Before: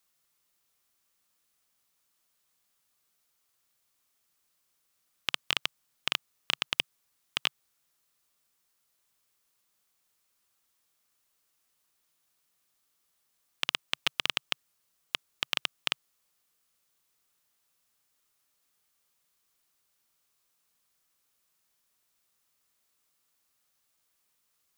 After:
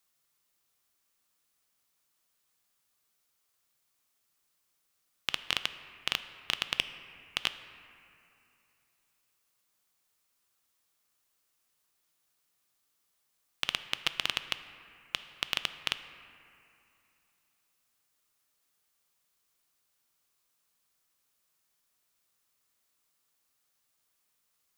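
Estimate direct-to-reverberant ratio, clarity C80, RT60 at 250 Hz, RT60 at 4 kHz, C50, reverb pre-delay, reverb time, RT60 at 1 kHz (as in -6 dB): 10.5 dB, 12.5 dB, 2.9 s, 1.9 s, 11.5 dB, 3 ms, 2.7 s, 2.8 s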